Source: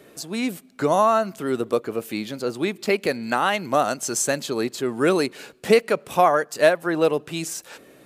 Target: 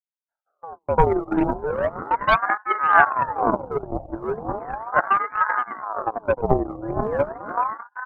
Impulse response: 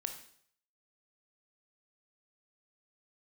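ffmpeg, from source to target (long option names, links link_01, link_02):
-filter_complex "[0:a]areverse,aeval=exprs='val(0)+0.00355*(sin(2*PI*60*n/s)+sin(2*PI*2*60*n/s)/2+sin(2*PI*3*60*n/s)/3+sin(2*PI*4*60*n/s)/4+sin(2*PI*5*60*n/s)/5)':channel_layout=same,asplit=2[link_01][link_02];[link_02]aecho=0:1:87|97|211|380|424|603:0.282|0.251|0.188|0.282|0.237|0.112[link_03];[link_01][link_03]amix=inputs=2:normalize=0,aeval=exprs='sgn(val(0))*max(abs(val(0))-0.01,0)':channel_layout=same,asuperpass=centerf=310:order=8:qfactor=0.85,asplit=2[link_04][link_05];[link_05]aecho=0:1:164:0.126[link_06];[link_04][link_06]amix=inputs=2:normalize=0,aeval=exprs='0.447*(cos(1*acos(clip(val(0)/0.447,-1,1)))-cos(1*PI/2))+0.0794*(cos(3*acos(clip(val(0)/0.447,-1,1)))-cos(3*PI/2))+0.0282*(cos(8*acos(clip(val(0)/0.447,-1,1)))-cos(8*PI/2))':channel_layout=same,aphaser=in_gain=1:out_gain=1:delay=1.3:decay=0.76:speed=2:type=triangular,agate=range=-23dB:threshold=-39dB:ratio=16:detection=peak,alimiter=level_in=4dB:limit=-1dB:release=50:level=0:latency=1,aeval=exprs='val(0)*sin(2*PI*800*n/s+800*0.6/0.37*sin(2*PI*0.37*n/s))':channel_layout=same"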